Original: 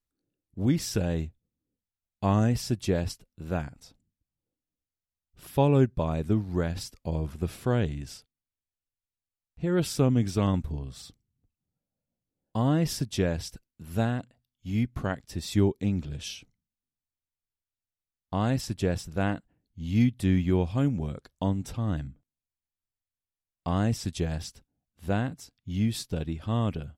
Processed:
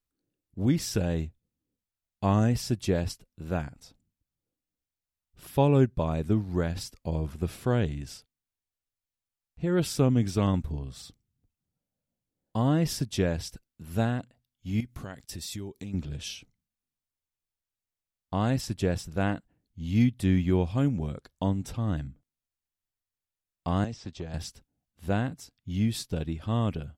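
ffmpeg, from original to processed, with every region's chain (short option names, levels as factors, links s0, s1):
-filter_complex "[0:a]asettb=1/sr,asplit=3[s0][s1][s2];[s0]atrim=end=14.804[s3];[s1]atrim=start=14.8:end=15.94,asetpts=PTS-STARTPTS,afade=t=in:d=0.004:c=qsin,afade=t=out:st=1.136:d=0.004:c=qsin,agate=range=0.0224:threshold=0.00178:ratio=3:release=100:detection=peak,highshelf=f=3600:g=10.5,acompressor=threshold=0.0178:ratio=5:attack=3.2:release=140:knee=1:detection=peak[s4];[s2]atrim=start=15.936[s5];[s3][s4]acrossfade=d=0.004:c1=hsin:c2=qsin[s6];[s6][s5]acrossfade=d=0.004:c1=qsin:c2=hsin,asettb=1/sr,asplit=3[s7][s8][s9];[s7]atrim=end=23.844[s10];[s8]atrim=start=23.84:end=24.34,asetpts=PTS-STARTPTS,afade=t=in:d=0.004:c=qsin,afade=t=out:st=0.496:d=0.004:c=qsin,lowpass=f=6300:w=0.5412,lowpass=f=6300:w=1.3066,acrossover=split=280|1400|3700[s11][s12][s13][s14];[s11]acompressor=threshold=0.01:ratio=3[s15];[s12]acompressor=threshold=0.01:ratio=3[s16];[s13]acompressor=threshold=0.00126:ratio=3[s17];[s14]acompressor=threshold=0.00224:ratio=3[s18];[s15][s16][s17][s18]amix=inputs=4:normalize=0,aeval=exprs='clip(val(0),-1,0.0299)':c=same[s19];[s9]atrim=start=24.336[s20];[s10][s19]acrossfade=d=0.004:c1=hsin:c2=qsin[s21];[s21][s20]acrossfade=d=0.004:c1=qsin:c2=hsin"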